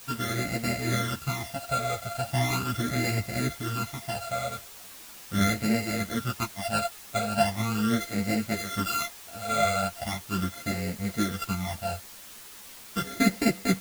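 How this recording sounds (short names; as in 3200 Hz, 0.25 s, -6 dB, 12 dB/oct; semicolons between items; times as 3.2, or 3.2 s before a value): a buzz of ramps at a fixed pitch in blocks of 64 samples; phasing stages 12, 0.39 Hz, lowest notch 300–1100 Hz; a quantiser's noise floor 8-bit, dither triangular; a shimmering, thickened sound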